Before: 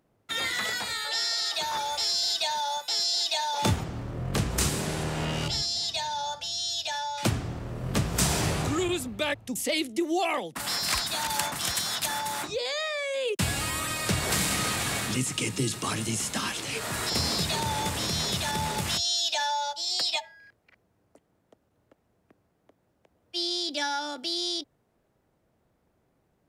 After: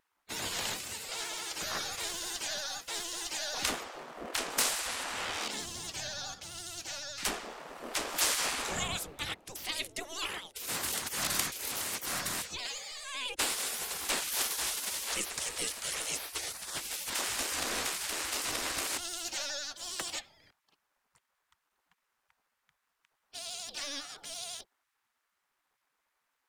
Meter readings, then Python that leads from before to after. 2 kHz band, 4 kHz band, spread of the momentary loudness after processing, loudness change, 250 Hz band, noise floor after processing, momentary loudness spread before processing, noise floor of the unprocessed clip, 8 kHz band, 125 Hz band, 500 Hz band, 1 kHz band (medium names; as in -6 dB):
-5.0 dB, -7.5 dB, 9 LU, -6.0 dB, -15.0 dB, -82 dBFS, 6 LU, -72 dBFS, -2.0 dB, -20.0 dB, -10.0 dB, -9.5 dB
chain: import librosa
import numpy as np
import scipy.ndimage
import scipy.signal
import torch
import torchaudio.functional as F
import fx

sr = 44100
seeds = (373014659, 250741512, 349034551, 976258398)

y = np.where(x < 0.0, 10.0 ** (-3.0 / 20.0) * x, x)
y = fx.spec_gate(y, sr, threshold_db=-15, keep='weak')
y = fx.vibrato(y, sr, rate_hz=12.0, depth_cents=74.0)
y = F.gain(torch.from_numpy(y), 2.0).numpy()